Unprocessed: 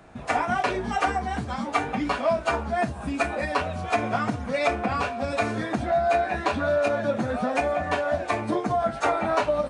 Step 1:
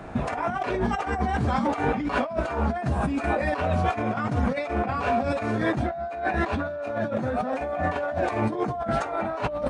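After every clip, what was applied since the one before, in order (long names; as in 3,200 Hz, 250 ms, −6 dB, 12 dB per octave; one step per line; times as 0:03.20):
high-shelf EQ 2,800 Hz −9.5 dB
compressor whose output falls as the input rises −33 dBFS, ratio −1
level +6 dB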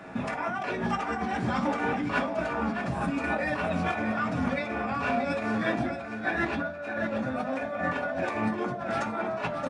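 single-tap delay 625 ms −8.5 dB
convolution reverb RT60 0.45 s, pre-delay 3 ms, DRR 5 dB
level −4 dB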